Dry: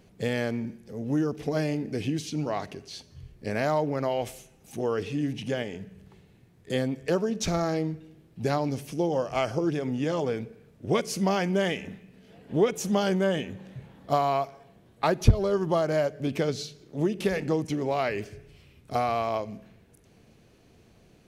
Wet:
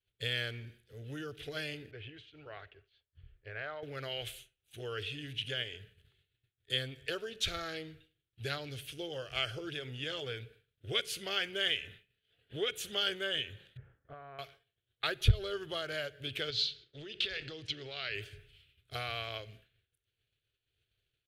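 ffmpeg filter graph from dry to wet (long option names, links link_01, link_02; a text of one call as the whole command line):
ffmpeg -i in.wav -filter_complex "[0:a]asettb=1/sr,asplit=3[link_01][link_02][link_03];[link_01]atrim=end=1.914[link_04];[link_02]atrim=start=1.91:end=3.83,asetpts=PTS-STARTPTS,afade=type=in:duration=0.004:curve=qsin,afade=type=out:start_time=1.916:duration=0.004:curve=qsin,lowpass=1500,equalizer=frequency=190:width_type=o:width=1.5:gain=-14[link_05];[link_03]atrim=start=3.826[link_06];[link_04][link_05]acrossfade=duration=0.004:curve1=hsin:curve2=qsin[link_07];[link_07][link_06]acrossfade=duration=0.004:curve1=qsin:curve2=hsin,asettb=1/sr,asplit=3[link_08][link_09][link_10];[link_08]atrim=end=13.774[link_11];[link_09]atrim=start=13.77:end=14.39,asetpts=PTS-STARTPTS,afade=type=in:duration=0.004:curve=qsin,afade=type=out:start_time=0.616:duration=0.004:curve=qsin,lowpass=frequency=1600:width=0.5412,lowpass=frequency=1600:width=1.3066,acompressor=threshold=-32dB:ratio=3:attack=3.2:release=140:knee=1:detection=peak[link_12];[link_10]atrim=start=14.386[link_13];[link_11][link_12]acrossfade=duration=0.004:curve1=hsin:curve2=qsin[link_14];[link_14][link_13]acrossfade=duration=0.004:curve1=qsin:curve2=hsin,asettb=1/sr,asplit=3[link_15][link_16][link_17];[link_15]atrim=end=16.504[link_18];[link_16]atrim=start=16.5:end=18.15,asetpts=PTS-STARTPTS,afade=type=in:duration=0.004:curve=qsin,afade=type=out:start_time=1.646:duration=0.004:curve=qsin,acompressor=threshold=-28dB:ratio=5:attack=3.2:release=140:knee=1:detection=peak,lowpass=frequency=4800:width_type=q:width=2.4[link_19];[link_17]atrim=start=18.146[link_20];[link_18][link_19]acrossfade=duration=0.004:curve1=hsin:curve2=qsin[link_21];[link_21][link_20]acrossfade=duration=0.004:curve1=qsin:curve2=hsin,firequalizer=gain_entry='entry(120,0);entry(180,-22);entry(400,-7);entry(970,-21);entry(1400,-2);entry(2100,-6);entry(3300,4);entry(5500,-17);entry(9400,-9)':delay=0.05:min_phase=1,agate=range=-33dB:threshold=-49dB:ratio=3:detection=peak,tiltshelf=frequency=1300:gain=-6" out.wav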